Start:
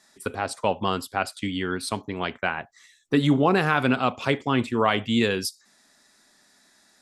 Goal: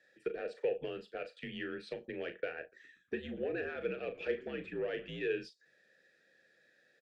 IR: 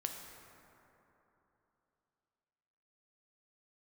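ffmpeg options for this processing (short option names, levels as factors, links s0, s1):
-filter_complex "[0:a]acrossover=split=7200[s0][s1];[s1]acompressor=threshold=0.00178:ratio=4:attack=1:release=60[s2];[s0][s2]amix=inputs=2:normalize=0,highshelf=f=4800:g=-4,acompressor=threshold=0.0447:ratio=4,asoftclip=type=tanh:threshold=0.0944,asplit=3[s3][s4][s5];[s3]bandpass=f=530:t=q:w=8,volume=1[s6];[s4]bandpass=f=1840:t=q:w=8,volume=0.501[s7];[s5]bandpass=f=2480:t=q:w=8,volume=0.355[s8];[s6][s7][s8]amix=inputs=3:normalize=0,afreqshift=-62,asplit=2[s9][s10];[s10]adelay=38,volume=0.316[s11];[s9][s11]amix=inputs=2:normalize=0,asettb=1/sr,asplit=3[s12][s13][s14];[s12]atrim=end=2.604[s15];[s13]atrim=start=2.6:end=5.16,asetpts=PTS-STARTPTS,afade=t=in:d=0.004:c=qsin,afade=t=out:st=2.556:d=0.004:c=qsin,asplit=5[s16][s17][s18][s19][s20];[s17]adelay=119,afreqshift=-98,volume=0.0891[s21];[s18]adelay=238,afreqshift=-196,volume=0.0457[s22];[s19]adelay=357,afreqshift=-294,volume=0.0232[s23];[s20]adelay=476,afreqshift=-392,volume=0.0119[s24];[s16][s21][s22][s23][s24]amix=inputs=5:normalize=0,atrim=end_sample=112896[s25];[s14]atrim=start=5.156[s26];[s15][s25]acrossfade=d=0.004:c1=hsin:c2=qsin[s27];[s27][s26]acrossfade=d=0.004:c1=qsin:c2=hsin,volume=1.88"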